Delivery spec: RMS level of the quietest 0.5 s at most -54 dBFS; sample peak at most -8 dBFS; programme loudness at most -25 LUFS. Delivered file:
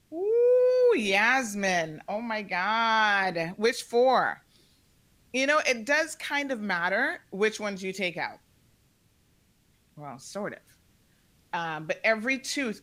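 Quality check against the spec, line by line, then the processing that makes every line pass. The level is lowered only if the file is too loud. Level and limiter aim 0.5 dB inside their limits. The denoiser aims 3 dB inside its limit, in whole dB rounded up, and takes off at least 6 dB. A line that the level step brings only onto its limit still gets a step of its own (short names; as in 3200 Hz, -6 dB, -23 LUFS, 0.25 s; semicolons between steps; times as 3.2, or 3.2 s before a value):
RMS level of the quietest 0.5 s -65 dBFS: OK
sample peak -11.0 dBFS: OK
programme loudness -26.0 LUFS: OK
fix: none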